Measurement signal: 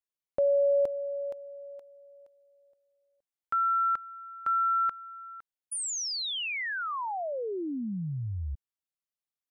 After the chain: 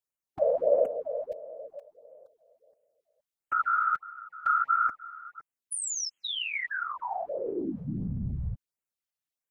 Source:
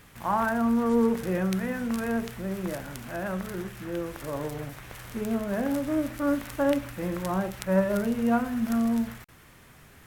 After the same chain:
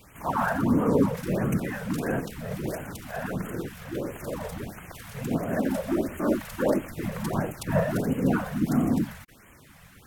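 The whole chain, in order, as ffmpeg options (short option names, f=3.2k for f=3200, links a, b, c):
-af "afftfilt=real='hypot(re,im)*cos(2*PI*random(0))':imag='hypot(re,im)*sin(2*PI*random(1))':win_size=512:overlap=0.75,afftfilt=real='re*(1-between(b*sr/1024,280*pow(4700/280,0.5+0.5*sin(2*PI*1.5*pts/sr))/1.41,280*pow(4700/280,0.5+0.5*sin(2*PI*1.5*pts/sr))*1.41))':imag='im*(1-between(b*sr/1024,280*pow(4700/280,0.5+0.5*sin(2*PI*1.5*pts/sr))/1.41,280*pow(4700/280,0.5+0.5*sin(2*PI*1.5*pts/sr))*1.41))':win_size=1024:overlap=0.75,volume=7dB"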